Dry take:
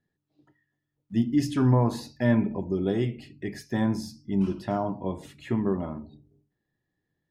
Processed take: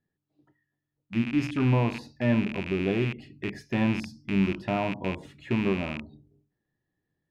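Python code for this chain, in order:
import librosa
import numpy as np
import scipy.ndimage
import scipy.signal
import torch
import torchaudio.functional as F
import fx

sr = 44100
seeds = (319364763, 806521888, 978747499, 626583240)

p1 = fx.rattle_buzz(x, sr, strikes_db=-35.0, level_db=-21.0)
p2 = fx.lowpass(p1, sr, hz=3000.0, slope=6)
p3 = fx.rider(p2, sr, range_db=10, speed_s=2.0)
p4 = p2 + (p3 * 10.0 ** (-0.5 / 20.0))
y = p4 * 10.0 ** (-7.0 / 20.0)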